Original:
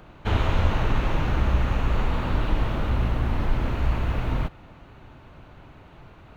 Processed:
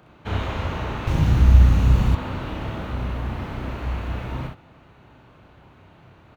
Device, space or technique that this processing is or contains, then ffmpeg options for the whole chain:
slapback doubling: -filter_complex "[0:a]asplit=3[a][b][c];[b]adelay=32,volume=-5dB[d];[c]adelay=63,volume=-4dB[e];[a][d][e]amix=inputs=3:normalize=0,highpass=68,asettb=1/sr,asplit=3[f][g][h];[f]atrim=end=1.074[i];[g]atrim=start=1.07:end=2.15,asetpts=PTS-STARTPTS,afade=t=in:d=0.004:c=qsin,afade=t=out:st=1.076:d=0.004:c=qsin,bass=f=250:g=13,treble=f=4k:g=11[j];[h]atrim=start=2.146[k];[i][j]acrossfade=d=0.004:c1=hsin:c2=qsin[l];[l][k]acrossfade=d=0.004:c1=qsin:c2=hsin,volume=-4dB"

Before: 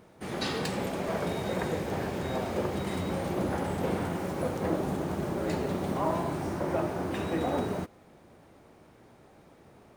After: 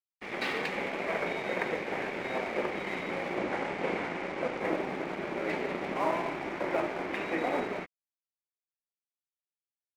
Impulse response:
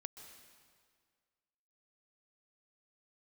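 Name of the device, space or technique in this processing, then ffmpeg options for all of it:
pocket radio on a weak battery: -filter_complex "[0:a]highpass=290,lowpass=3.1k,aeval=exprs='sgn(val(0))*max(abs(val(0))-0.00562,0)':c=same,equalizer=f=2.2k:t=o:w=0.55:g=12,asettb=1/sr,asplit=3[a][b][c];[a]atrim=end=3.384[d];[b]atrim=start=3.38:end=4.6,asetpts=PTS-STARTPTS,afade=t=in:d=0.004:c=qsin,afade=t=out:st=1.216:d=0.004:c=qsin,lowpass=9.6k[e];[c]atrim=start=4.596[f];[d][e]acrossfade=d=0.004:c1=hsin:c2=qsin[g];[g][f]acrossfade=d=0.004:c1=qsin:c2=hsin,volume=1dB"

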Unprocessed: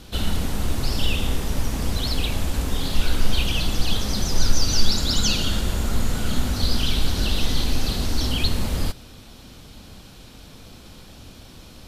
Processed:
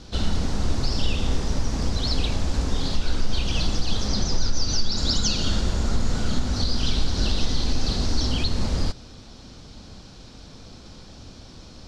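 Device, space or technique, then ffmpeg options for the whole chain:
over-bright horn tweeter: -filter_complex "[0:a]asettb=1/sr,asplit=3[a][b][c];[a]atrim=end=4.084[d];[b]atrim=start=4.08:end=4.97,asetpts=PTS-STARTPTS,afade=t=in:d=0.004:c=qsin,afade=t=out:st=0.886:d=0.004:c=qsin,lowpass=6.9k[e];[c]atrim=start=4.966[f];[d][e]acrossfade=d=0.004:c1=hsin:c2=qsin[g];[g][f]acrossfade=d=0.004:c1=qsin:c2=hsin,lowpass=5.4k,aemphasis=mode=reproduction:type=50fm,highshelf=f=4k:t=q:w=1.5:g=9.5,alimiter=limit=-11dB:level=0:latency=1:release=191"

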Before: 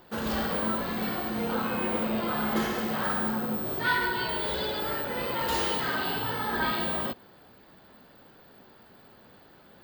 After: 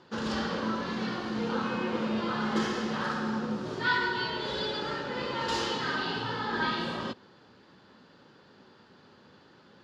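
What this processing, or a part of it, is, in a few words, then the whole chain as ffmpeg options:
car door speaker: -af "highpass=94,equalizer=f=680:t=q:w=4:g=-9,equalizer=f=2.2k:t=q:w=4:g=-4,equalizer=f=5.2k:t=q:w=4:g=4,lowpass=f=7.2k:w=0.5412,lowpass=f=7.2k:w=1.3066"

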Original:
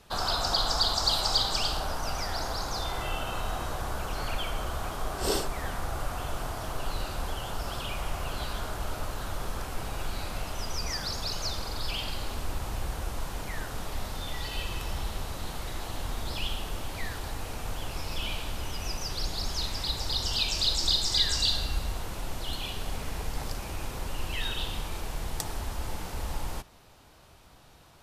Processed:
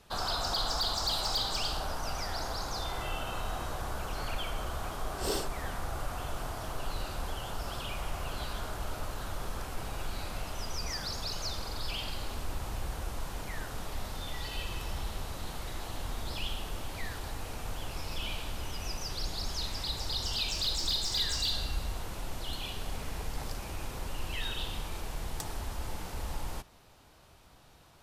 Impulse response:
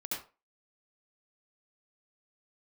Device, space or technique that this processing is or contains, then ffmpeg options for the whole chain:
saturation between pre-emphasis and de-emphasis: -af "highshelf=f=3k:g=9.5,asoftclip=type=tanh:threshold=-15.5dB,highshelf=f=3k:g=-9.5,volume=-3dB"

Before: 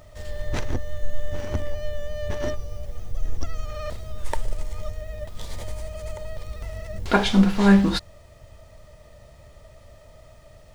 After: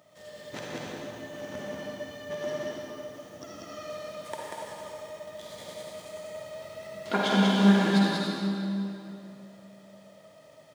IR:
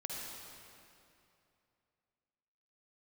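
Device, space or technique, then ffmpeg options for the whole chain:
stadium PA: -filter_complex "[0:a]highpass=f=160:w=0.5412,highpass=f=160:w=1.3066,equalizer=f=3.3k:t=o:w=0.22:g=4,aecho=1:1:189.5|291.5:0.708|0.282[a];[1:a]atrim=start_sample=2205[b];[a][b]afir=irnorm=-1:irlink=0,volume=-5dB"

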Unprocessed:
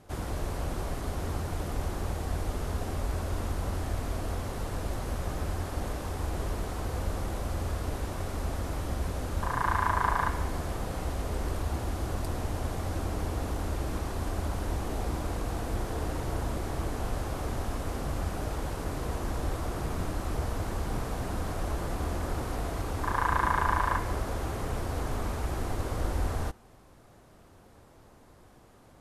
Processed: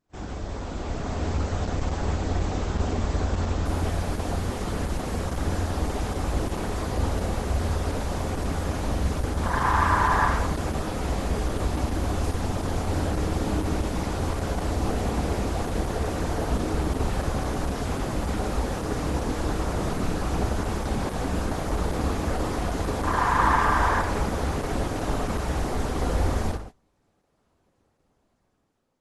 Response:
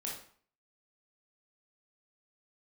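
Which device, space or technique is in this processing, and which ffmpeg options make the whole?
speakerphone in a meeting room: -filter_complex "[1:a]atrim=start_sample=2205[a];[0:a][a]afir=irnorm=-1:irlink=0,dynaudnorm=f=400:g=5:m=7dB,agate=range=-20dB:threshold=-38dB:ratio=16:detection=peak" -ar 48000 -c:a libopus -b:a 12k

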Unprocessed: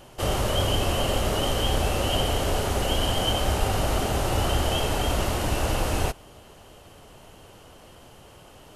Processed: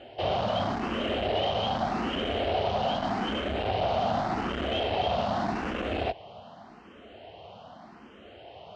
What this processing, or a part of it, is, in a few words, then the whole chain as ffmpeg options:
barber-pole phaser into a guitar amplifier: -filter_complex "[0:a]asplit=2[a][b];[b]afreqshift=0.84[c];[a][c]amix=inputs=2:normalize=1,asoftclip=type=tanh:threshold=-27dB,highpass=99,equalizer=f=130:t=q:w=4:g=-6,equalizer=f=220:t=q:w=4:g=7,equalizer=f=700:t=q:w=4:g=9,lowpass=f=4.1k:w=0.5412,lowpass=f=4.1k:w=1.3066,volume=2.5dB"

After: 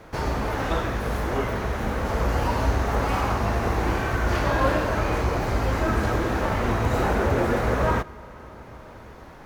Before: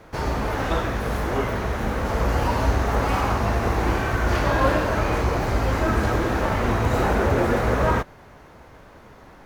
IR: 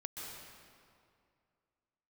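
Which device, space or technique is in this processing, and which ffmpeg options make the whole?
compressed reverb return: -filter_complex "[0:a]asplit=2[a][b];[1:a]atrim=start_sample=2205[c];[b][c]afir=irnorm=-1:irlink=0,acompressor=threshold=-36dB:ratio=6,volume=-1dB[d];[a][d]amix=inputs=2:normalize=0,volume=-2.5dB"

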